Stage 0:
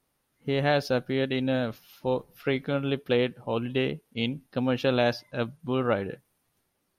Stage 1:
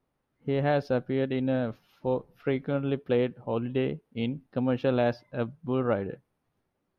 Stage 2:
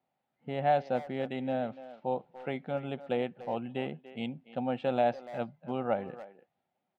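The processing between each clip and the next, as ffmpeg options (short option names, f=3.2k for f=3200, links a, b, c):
-af "lowpass=f=1.1k:p=1"
-filter_complex "[0:a]acrusher=samples=4:mix=1:aa=0.000001,highpass=200,equalizer=f=300:t=q:w=4:g=-9,equalizer=f=430:t=q:w=4:g=-9,equalizer=f=760:t=q:w=4:g=9,equalizer=f=1.1k:t=q:w=4:g=-8,equalizer=f=1.6k:t=q:w=4:g=-4,lowpass=f=4.1k:w=0.5412,lowpass=f=4.1k:w=1.3066,asplit=2[a][b];[b]adelay=290,highpass=300,lowpass=3.4k,asoftclip=type=hard:threshold=-24dB,volume=-14dB[c];[a][c]amix=inputs=2:normalize=0,volume=-1.5dB"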